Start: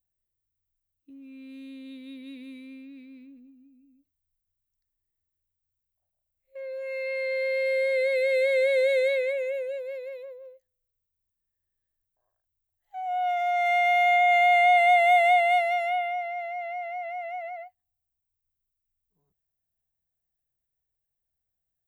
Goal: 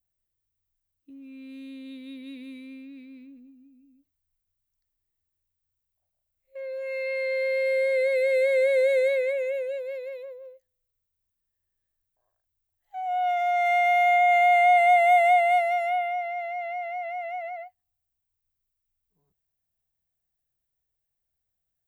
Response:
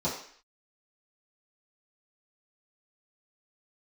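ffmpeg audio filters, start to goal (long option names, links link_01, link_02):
-af "adynamicequalizer=threshold=0.00794:dfrequency=3400:dqfactor=1.3:tfrequency=3400:tqfactor=1.3:attack=5:release=100:ratio=0.375:range=4:mode=cutabove:tftype=bell,volume=1.5dB"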